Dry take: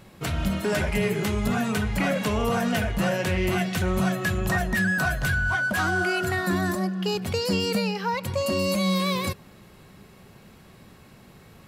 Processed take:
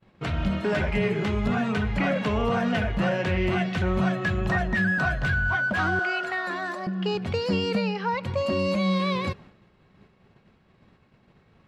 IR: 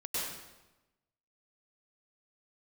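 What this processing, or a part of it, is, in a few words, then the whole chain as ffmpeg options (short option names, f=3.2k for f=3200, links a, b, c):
hearing-loss simulation: -filter_complex "[0:a]asettb=1/sr,asplit=3[a][b][c];[a]atrim=end=5.994[d];[b]atrim=start=5.99:end=6.87,asetpts=PTS-STARTPTS,afade=t=in:d=0.004:c=qsin,afade=t=out:st=0.876:d=0.004:c=qsin,highpass=540[e];[c]atrim=start=6.866[f];[d][e]acrossfade=d=0.004:c1=hsin:c2=qsin[g];[g][f]acrossfade=d=0.004:c1=qsin:c2=hsin,lowpass=3.4k,agate=range=-33dB:threshold=-42dB:ratio=3:detection=peak"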